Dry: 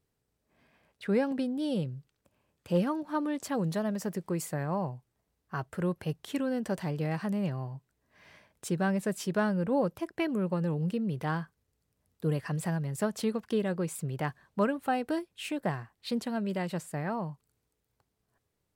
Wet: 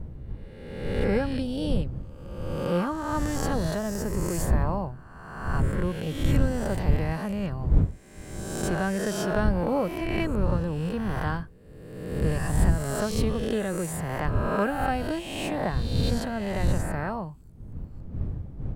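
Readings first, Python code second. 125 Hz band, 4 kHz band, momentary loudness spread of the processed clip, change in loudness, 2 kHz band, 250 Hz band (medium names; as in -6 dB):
+7.0 dB, +6.0 dB, 15 LU, +4.0 dB, +5.5 dB, +2.5 dB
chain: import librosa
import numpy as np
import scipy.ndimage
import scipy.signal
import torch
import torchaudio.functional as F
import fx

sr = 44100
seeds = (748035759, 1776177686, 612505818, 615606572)

y = fx.spec_swells(x, sr, rise_s=1.39)
y = fx.dmg_wind(y, sr, seeds[0], corner_hz=100.0, level_db=-29.0)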